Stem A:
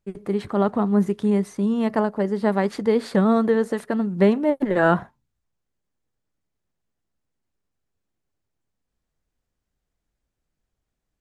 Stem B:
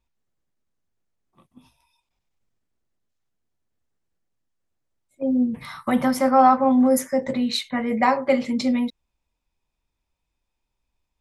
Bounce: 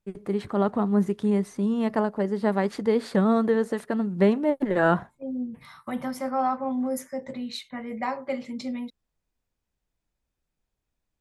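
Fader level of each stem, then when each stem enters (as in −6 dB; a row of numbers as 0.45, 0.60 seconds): −3.0, −10.5 decibels; 0.00, 0.00 seconds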